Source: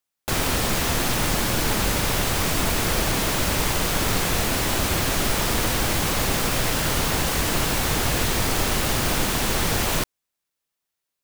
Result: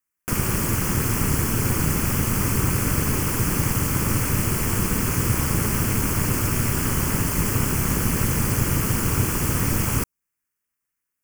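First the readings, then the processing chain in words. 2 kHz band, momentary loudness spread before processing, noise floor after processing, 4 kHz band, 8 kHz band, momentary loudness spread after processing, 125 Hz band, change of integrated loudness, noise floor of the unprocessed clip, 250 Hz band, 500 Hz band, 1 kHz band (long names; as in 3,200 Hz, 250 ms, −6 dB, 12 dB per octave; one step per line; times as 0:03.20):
−4.0 dB, 0 LU, −82 dBFS, −9.5 dB, −0.5 dB, 1 LU, +5.5 dB, 0.0 dB, −83 dBFS, +2.5 dB, −3.5 dB, −4.0 dB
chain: phaser with its sweep stopped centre 1,600 Hz, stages 4
ring modulation 110 Hz
dynamic equaliser 1,800 Hz, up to −7 dB, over −48 dBFS, Q 1.6
level +5.5 dB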